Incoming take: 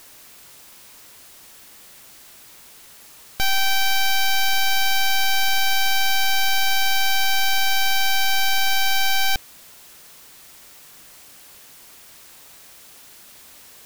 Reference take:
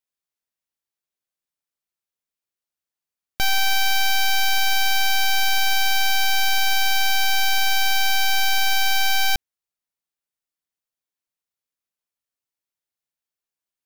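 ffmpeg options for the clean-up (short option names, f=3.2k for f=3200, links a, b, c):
-af "afwtdn=0.005,asetnsamples=n=441:p=0,asendcmd='10.25 volume volume 5dB',volume=0dB"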